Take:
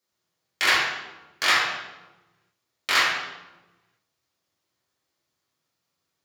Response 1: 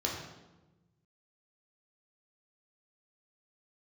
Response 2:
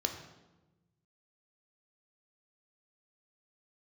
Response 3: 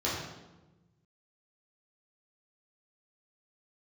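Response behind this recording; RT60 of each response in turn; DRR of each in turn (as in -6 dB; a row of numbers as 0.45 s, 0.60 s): 3; 1.1 s, 1.1 s, 1.1 s; -3.0 dB, 3.5 dB, -8.5 dB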